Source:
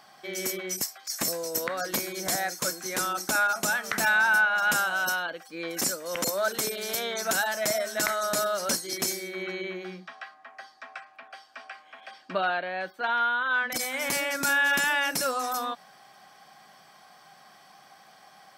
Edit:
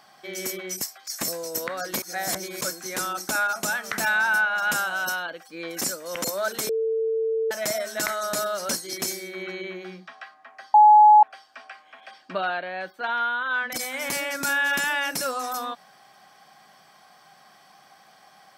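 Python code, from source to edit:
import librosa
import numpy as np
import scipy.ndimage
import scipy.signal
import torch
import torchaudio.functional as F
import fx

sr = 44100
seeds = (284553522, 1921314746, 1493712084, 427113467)

y = fx.edit(x, sr, fx.reverse_span(start_s=2.02, length_s=0.59),
    fx.bleep(start_s=6.69, length_s=0.82, hz=447.0, db=-21.5),
    fx.bleep(start_s=10.74, length_s=0.49, hz=846.0, db=-9.0), tone=tone)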